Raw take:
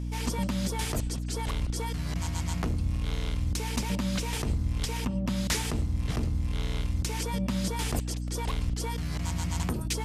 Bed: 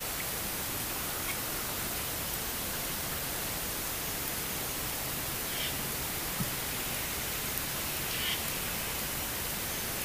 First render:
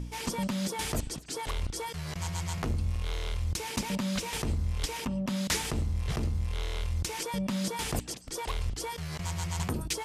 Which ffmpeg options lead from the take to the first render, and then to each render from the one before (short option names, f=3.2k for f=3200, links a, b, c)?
-af "bandreject=f=60:t=h:w=4,bandreject=f=120:t=h:w=4,bandreject=f=180:t=h:w=4,bandreject=f=240:t=h:w=4,bandreject=f=300:t=h:w=4"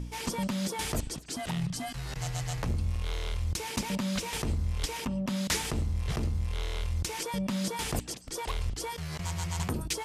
-filter_complex "[0:a]asettb=1/sr,asplit=3[a][b][c];[a]atrim=end=1.364[d];[b]atrim=start=1.36:end=2.69,asetpts=PTS-STARTPTS,afade=t=in:d=0.004:c=qsin,afade=t=out:st=1.326:d=0.004:c=qsin,afreqshift=-210[e];[c]atrim=start=2.686[f];[d][e]acrossfade=d=0.004:c1=hsin:c2=qsin[g];[g][f]acrossfade=d=0.004:c1=qsin:c2=hsin"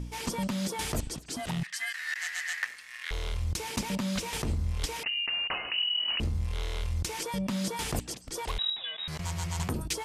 -filter_complex "[0:a]asettb=1/sr,asplit=3[a][b][c];[a]atrim=end=1.634[d];[b]atrim=start=1.63:end=3.11,asetpts=PTS-STARTPTS,afade=t=in:d=0.004:c=qsin,afade=t=out:st=1.476:d=0.004:c=qsin,highpass=f=1.8k:t=q:w=9.7[e];[c]atrim=start=3.106[f];[d][e]acrossfade=d=0.004:c1=hsin:c2=qsin[g];[g][f]acrossfade=d=0.004:c1=qsin:c2=hsin,asettb=1/sr,asplit=3[h][i][j];[h]atrim=end=5.034[k];[i]atrim=start=5.03:end=6.2,asetpts=PTS-STARTPTS,afade=t=in:d=0.004:c=qsin,afade=t=out:st=1.166:d=0.004:c=qsin,lowpass=f=2.6k:t=q:w=0.5098,lowpass=f=2.6k:t=q:w=0.6013,lowpass=f=2.6k:t=q:w=0.9,lowpass=f=2.6k:t=q:w=2.563,afreqshift=-3000[l];[j]atrim=start=6.196[m];[k][l]acrossfade=d=0.004:c1=hsin:c2=qsin[n];[n][m]acrossfade=d=0.004:c1=qsin:c2=hsin,asettb=1/sr,asplit=3[o][p][q];[o]atrim=end=8.584[r];[p]atrim=start=8.58:end=9.08,asetpts=PTS-STARTPTS,afade=t=in:d=0.004:c=qsin,afade=t=out:st=0.496:d=0.004:c=qsin,lowpass=f=3.3k:t=q:w=0.5098,lowpass=f=3.3k:t=q:w=0.6013,lowpass=f=3.3k:t=q:w=0.9,lowpass=f=3.3k:t=q:w=2.563,afreqshift=-3900[s];[q]atrim=start=9.076[t];[r][s]acrossfade=d=0.004:c1=hsin:c2=qsin[u];[u][t]acrossfade=d=0.004:c1=qsin:c2=hsin"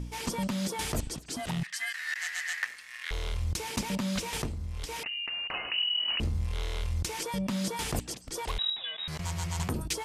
-filter_complex "[0:a]asettb=1/sr,asplit=3[a][b][c];[a]atrim=end=4.464[d];[b]atrim=start=4.46:end=5.54,asetpts=PTS-STARTPTS,afade=t=in:d=0.004:c=qsin,afade=t=out:st=1.076:d=0.004:c=qsin,acompressor=threshold=-32dB:ratio=6:attack=3.2:release=140:knee=1:detection=peak[e];[c]atrim=start=5.536[f];[d][e]acrossfade=d=0.004:c1=hsin:c2=qsin[g];[g][f]acrossfade=d=0.004:c1=qsin:c2=hsin"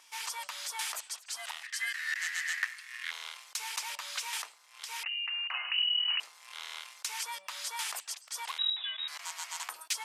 -af "highpass=f=950:w=0.5412,highpass=f=950:w=1.3066"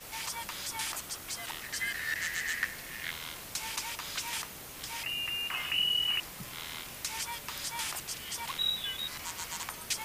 -filter_complex "[1:a]volume=-11dB[a];[0:a][a]amix=inputs=2:normalize=0"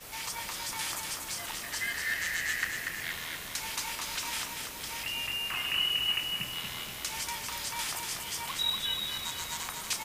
-filter_complex "[0:a]asplit=2[a][b];[b]adelay=33,volume=-11dB[c];[a][c]amix=inputs=2:normalize=0,aecho=1:1:239|478|717|956|1195|1434|1673:0.596|0.316|0.167|0.0887|0.047|0.0249|0.0132"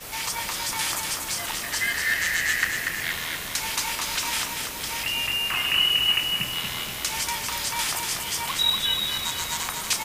-af "volume=8dB"